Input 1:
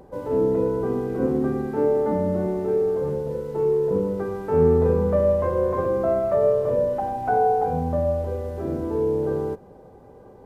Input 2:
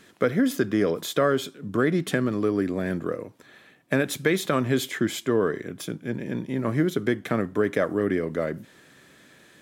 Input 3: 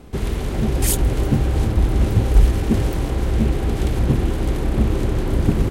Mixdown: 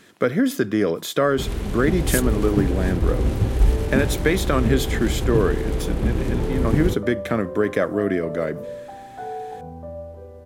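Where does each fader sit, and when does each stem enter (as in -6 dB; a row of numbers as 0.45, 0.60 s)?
-12.0, +2.5, -4.0 dB; 1.90, 0.00, 1.25 s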